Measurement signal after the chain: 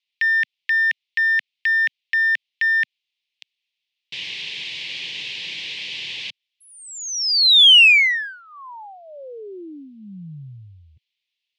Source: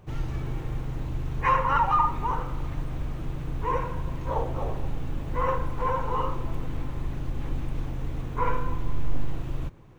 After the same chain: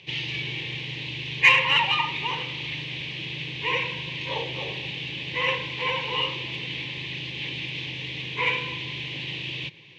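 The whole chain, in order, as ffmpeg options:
ffmpeg -i in.wav -af "highpass=frequency=130:width=0.5412,highpass=frequency=130:width=1.3066,equalizer=frequency=240:width_type=q:width=4:gain=-10,equalizer=frequency=690:width_type=q:width=4:gain=-10,equalizer=frequency=1300:width_type=q:width=4:gain=-9,lowpass=frequency=3000:width=0.5412,lowpass=frequency=3000:width=1.3066,aexciter=amount=15.8:drive=9.3:freq=2300" out.wav

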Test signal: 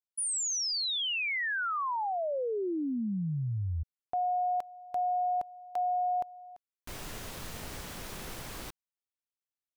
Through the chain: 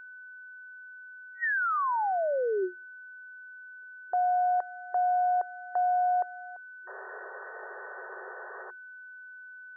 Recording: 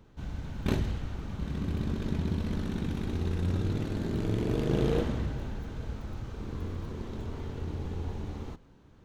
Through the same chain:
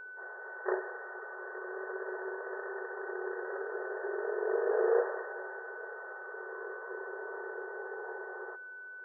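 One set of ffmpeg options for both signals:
ffmpeg -i in.wav -af "afftfilt=real='re*between(b*sr/4096,360,1900)':imag='im*between(b*sr/4096,360,1900)':win_size=4096:overlap=0.75,aeval=exprs='val(0)+0.00398*sin(2*PI*1500*n/s)':channel_layout=same,volume=4dB" out.wav

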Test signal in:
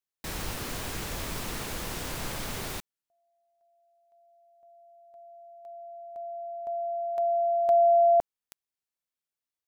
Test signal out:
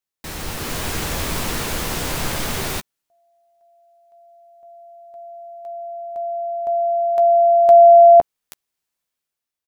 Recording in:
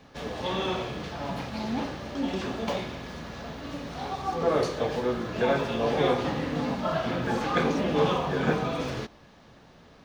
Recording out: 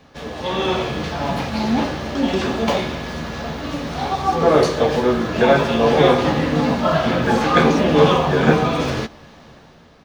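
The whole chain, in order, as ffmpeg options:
ffmpeg -i in.wav -filter_complex "[0:a]dynaudnorm=framelen=180:gausssize=7:maxgain=7dB,asplit=2[link_01][link_02];[link_02]adelay=13,volume=-11dB[link_03];[link_01][link_03]amix=inputs=2:normalize=0,volume=3.5dB" out.wav

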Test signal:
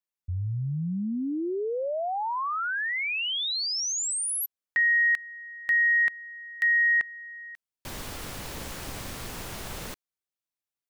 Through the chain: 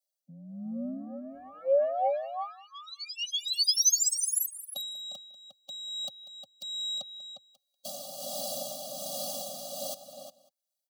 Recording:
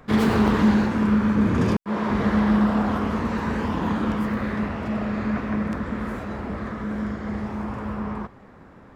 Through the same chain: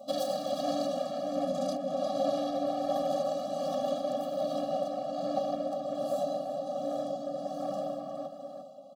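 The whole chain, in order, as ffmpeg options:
ffmpeg -i in.wav -filter_complex "[0:a]aeval=exprs='0.398*(cos(1*acos(clip(val(0)/0.398,-1,1)))-cos(1*PI/2))+0.0562*(cos(5*acos(clip(val(0)/0.398,-1,1)))-cos(5*PI/2))+0.0398*(cos(8*acos(clip(val(0)/0.398,-1,1)))-cos(8*PI/2))':channel_layout=same,asuperstop=centerf=1700:order=8:qfactor=0.69,asplit=2[link_01][link_02];[link_02]asoftclip=type=tanh:threshold=-26.5dB,volume=-3.5dB[link_03];[link_01][link_03]amix=inputs=2:normalize=0,aecho=1:1:2.5:0.51,tremolo=f=1.3:d=0.59,highpass=frequency=310:width_type=q:width=3.6,asplit=2[link_04][link_05];[link_05]adelay=355.7,volume=-7dB,highshelf=frequency=4000:gain=-8[link_06];[link_04][link_06]amix=inputs=2:normalize=0,afreqshift=79,alimiter=limit=-10.5dB:level=0:latency=1:release=76,adynamicequalizer=threshold=0.00631:dfrequency=1600:dqfactor=2.6:tfrequency=1600:tqfactor=2.6:attack=5:release=100:ratio=0.375:range=2:mode=cutabove:tftype=bell,asplit=2[link_07][link_08];[link_08]aecho=0:1:191:0.126[link_09];[link_07][link_09]amix=inputs=2:normalize=0,afftfilt=real='re*eq(mod(floor(b*sr/1024/270),2),0)':imag='im*eq(mod(floor(b*sr/1024/270),2),0)':win_size=1024:overlap=0.75" out.wav

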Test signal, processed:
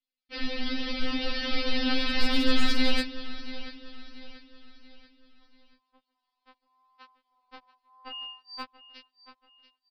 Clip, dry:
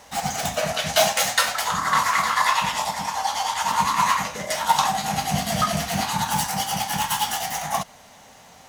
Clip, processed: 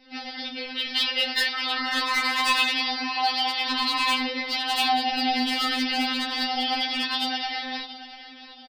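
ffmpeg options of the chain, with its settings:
ffmpeg -i in.wav -filter_complex "[0:a]acrossover=split=820[link_01][link_02];[link_01]alimiter=limit=-22dB:level=0:latency=1:release=60[link_03];[link_02]asoftclip=type=hard:threshold=-14.5dB[link_04];[link_03][link_04]amix=inputs=2:normalize=0,dynaudnorm=framelen=460:gausssize=7:maxgain=7.5dB,flanger=delay=19:depth=4.7:speed=0.83,aresample=11025,aresample=44100,equalizer=frequency=900:width_type=o:width=1.2:gain=-14.5,asplit=2[link_05][link_06];[link_06]aecho=0:1:684|1368|2052|2736:0.188|0.0772|0.0317|0.013[link_07];[link_05][link_07]amix=inputs=2:normalize=0,aeval=exprs='0.126*(abs(mod(val(0)/0.126+3,4)-2)-1)':channel_layout=same,afftfilt=real='re*3.46*eq(mod(b,12),0)':imag='im*3.46*eq(mod(b,12),0)':win_size=2048:overlap=0.75,volume=5dB" out.wav

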